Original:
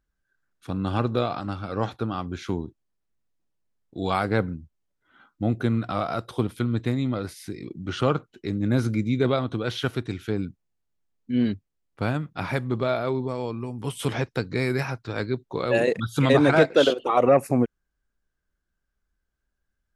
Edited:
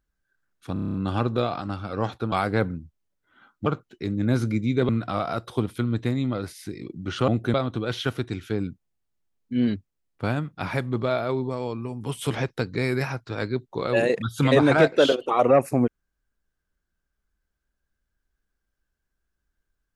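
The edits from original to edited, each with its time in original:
0.73 s: stutter 0.03 s, 8 plays
2.11–4.10 s: delete
5.44–5.70 s: swap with 8.09–9.32 s

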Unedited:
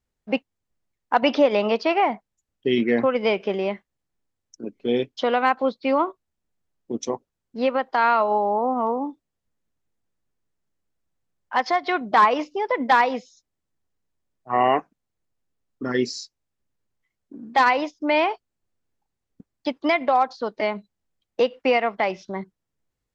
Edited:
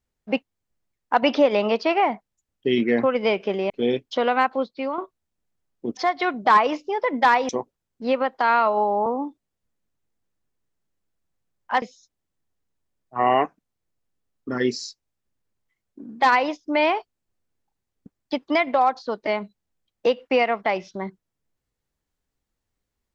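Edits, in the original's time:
3.70–4.76 s: delete
5.47–6.04 s: fade out, to -9.5 dB
8.60–8.88 s: delete
11.64–13.16 s: move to 7.03 s

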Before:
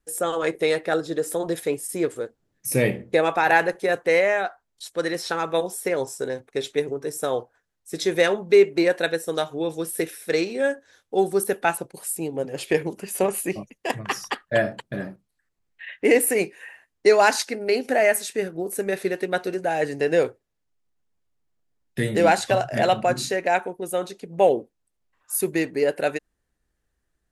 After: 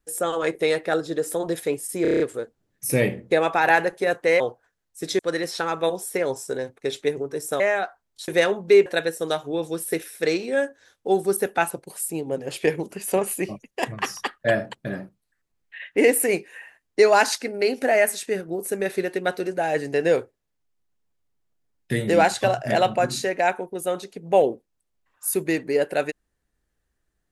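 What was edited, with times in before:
2.02 s: stutter 0.03 s, 7 plays
4.22–4.90 s: swap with 7.31–8.10 s
8.68–8.93 s: delete

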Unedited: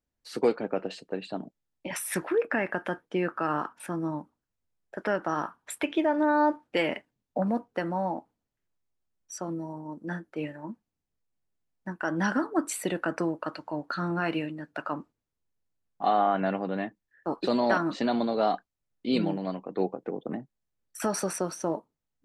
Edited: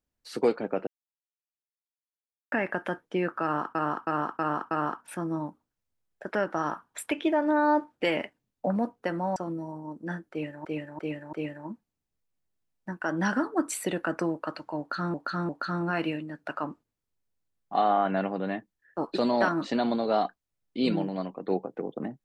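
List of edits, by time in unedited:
0.87–2.52 s: mute
3.43–3.75 s: loop, 5 plays
8.08–9.37 s: delete
10.32–10.66 s: loop, 4 plays
13.78–14.13 s: loop, 3 plays

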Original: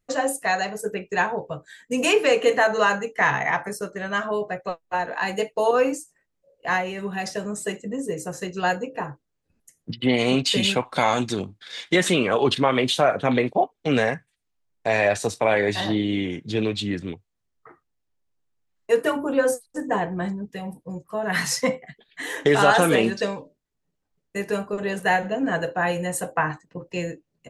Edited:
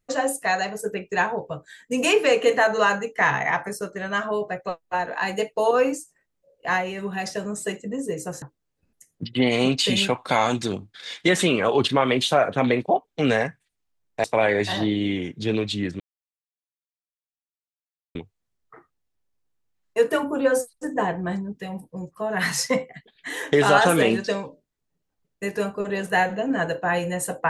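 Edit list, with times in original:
8.42–9.09 s: delete
14.91–15.32 s: delete
17.08 s: insert silence 2.15 s

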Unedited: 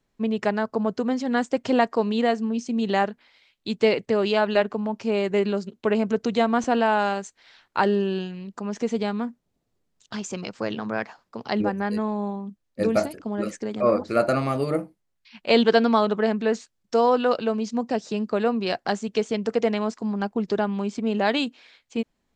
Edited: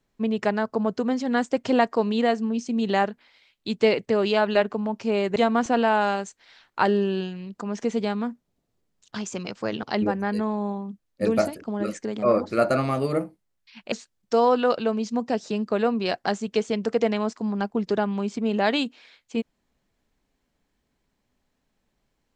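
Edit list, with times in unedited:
5.36–6.34 s: delete
10.81–11.41 s: delete
15.50–16.53 s: delete

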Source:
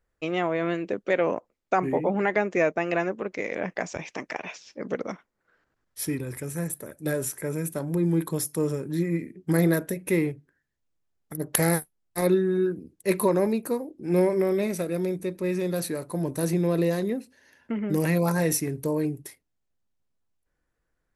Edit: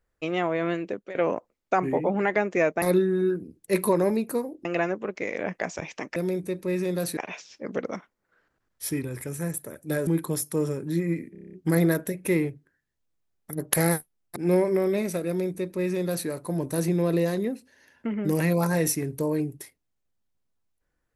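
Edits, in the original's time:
0.70–1.15 s: fade out equal-power, to -20 dB
7.23–8.10 s: delete
9.35 s: stutter 0.03 s, 8 plays
12.18–14.01 s: move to 2.82 s
14.92–15.93 s: copy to 4.33 s

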